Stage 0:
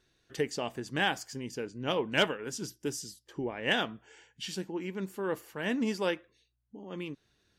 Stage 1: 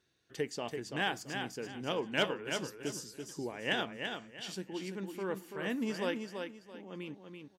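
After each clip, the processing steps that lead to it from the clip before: high-pass 80 Hz; on a send: feedback delay 335 ms, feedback 28%, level -6 dB; on the sum: trim -4.5 dB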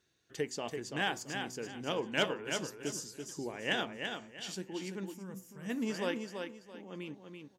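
peaking EQ 6.8 kHz +5 dB 0.37 oct; time-frequency box 5.14–5.70 s, 270–4800 Hz -14 dB; de-hum 126.2 Hz, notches 9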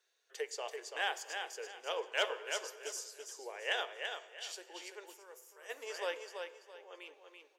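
steep high-pass 430 Hz 48 dB/octave; reverberation RT60 2.3 s, pre-delay 36 ms, DRR 17 dB; trim -1.5 dB

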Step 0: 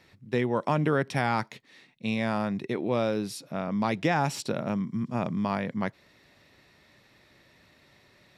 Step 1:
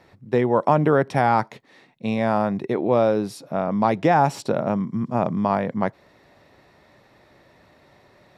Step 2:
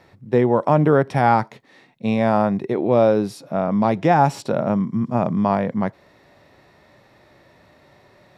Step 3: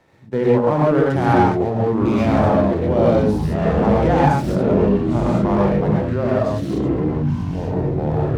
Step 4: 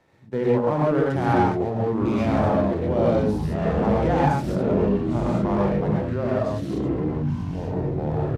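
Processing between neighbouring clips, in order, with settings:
FFT filter 230 Hz 0 dB, 770 Hz +6 dB, 2.6 kHz -6 dB; trim +5 dB
harmonic-percussive split percussive -6 dB; trim +4 dB
gated-style reverb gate 160 ms rising, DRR -4 dB; ever faster or slower copies 709 ms, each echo -5 st, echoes 3; sliding maximum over 5 samples; trim -5.5 dB
resampled via 32 kHz; trim -5 dB

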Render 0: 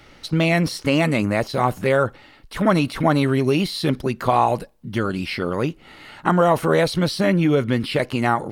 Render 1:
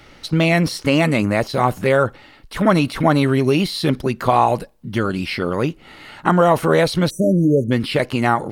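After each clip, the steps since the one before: spectral selection erased 7.10–7.71 s, 650–5800 Hz; trim +2.5 dB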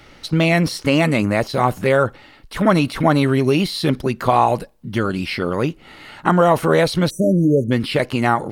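no audible change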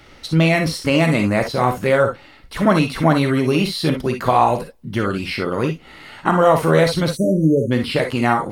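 gated-style reverb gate 80 ms rising, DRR 4.5 dB; trim -1 dB

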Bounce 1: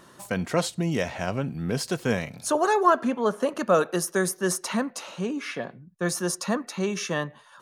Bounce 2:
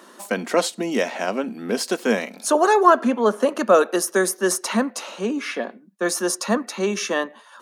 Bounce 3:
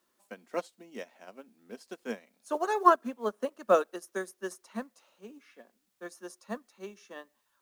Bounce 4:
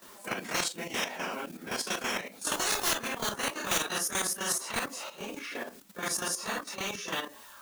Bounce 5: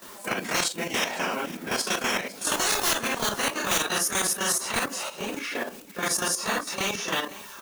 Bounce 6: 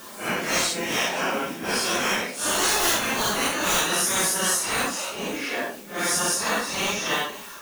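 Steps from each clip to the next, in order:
elliptic high-pass 210 Hz, stop band 40 dB; trim +6 dB
in parallel at -9.5 dB: word length cut 6-bit, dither triangular; on the sum: upward expansion 2.5:1, over -24 dBFS; trim -7.5 dB
phase randomisation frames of 100 ms; level held to a coarse grid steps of 11 dB; spectrum-flattening compressor 10:1; trim -2 dB
in parallel at +2 dB: peak limiter -23.5 dBFS, peak gain reduction 9 dB; on the sum: delay 506 ms -17.5 dB
phase randomisation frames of 200 ms; trim +3 dB

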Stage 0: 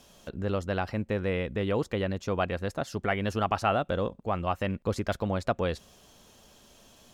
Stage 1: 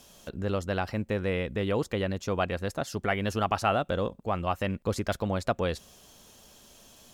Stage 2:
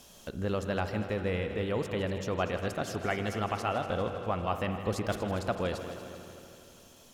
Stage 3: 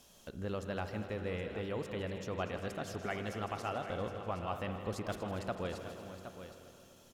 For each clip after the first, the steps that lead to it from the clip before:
treble shelf 5.6 kHz +7 dB
gain riding within 4 dB 0.5 s; multi-head delay 80 ms, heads second and third, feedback 63%, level -12.5 dB; spring tank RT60 2.8 s, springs 43/56 ms, chirp 35 ms, DRR 9.5 dB; trim -3.5 dB
delay 768 ms -11 dB; trim -7 dB

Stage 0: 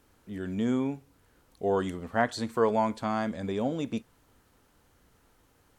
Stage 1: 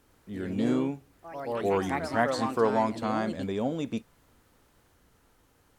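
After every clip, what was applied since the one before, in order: ever faster or slower copies 90 ms, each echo +3 st, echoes 3, each echo -6 dB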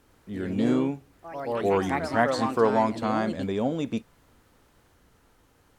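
treble shelf 7.5 kHz -4 dB; trim +3 dB

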